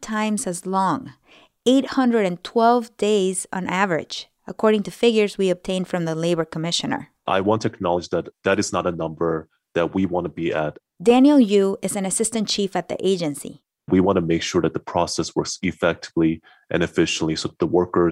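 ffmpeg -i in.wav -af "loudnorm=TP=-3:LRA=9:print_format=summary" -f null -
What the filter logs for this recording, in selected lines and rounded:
Input Integrated:    -21.3 LUFS
Input True Peak:      -5.2 dBTP
Input LRA:             3.1 LU
Input Threshold:     -31.6 LUFS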